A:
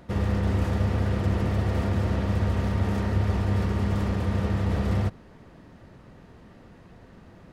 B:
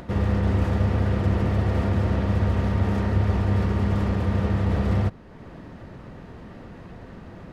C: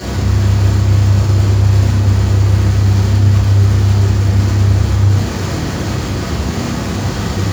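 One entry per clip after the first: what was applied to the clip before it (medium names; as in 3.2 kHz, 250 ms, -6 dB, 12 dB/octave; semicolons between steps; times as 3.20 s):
treble shelf 4.9 kHz -8 dB; in parallel at -3 dB: upward compressor, threshold -28 dBFS; on the sum: trim -2 dB
one-bit comparator; reverberation RT60 1.1 s, pre-delay 3 ms, DRR -11.5 dB; trim -9.5 dB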